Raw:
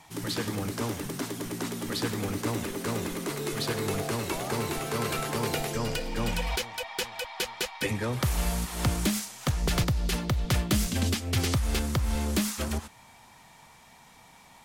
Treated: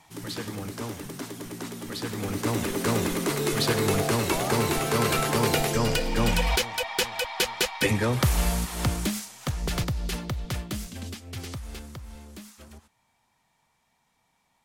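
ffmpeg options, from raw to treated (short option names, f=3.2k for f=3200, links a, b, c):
-af "volume=6dB,afade=t=in:st=2.04:d=0.78:silence=0.354813,afade=t=out:st=7.97:d=1.18:silence=0.398107,afade=t=out:st=10.1:d=0.81:silence=0.398107,afade=t=out:st=11.56:d=0.72:silence=0.446684"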